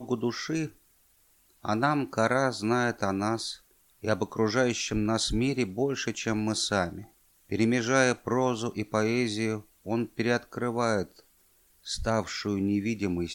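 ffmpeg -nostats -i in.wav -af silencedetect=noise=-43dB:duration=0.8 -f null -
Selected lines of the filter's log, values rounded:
silence_start: 0.69
silence_end: 1.64 | silence_duration: 0.95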